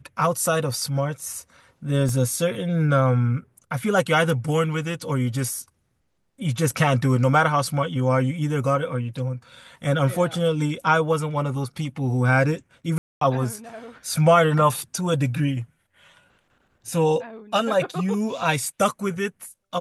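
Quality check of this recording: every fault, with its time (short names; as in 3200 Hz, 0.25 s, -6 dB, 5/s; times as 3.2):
2.09 gap 2.2 ms
12.98–13.21 gap 0.233 s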